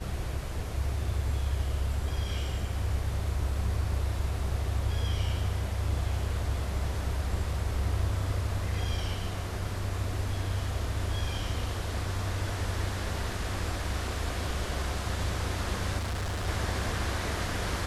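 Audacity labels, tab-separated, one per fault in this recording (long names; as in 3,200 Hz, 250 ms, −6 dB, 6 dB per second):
15.970000	16.480000	clipping −29 dBFS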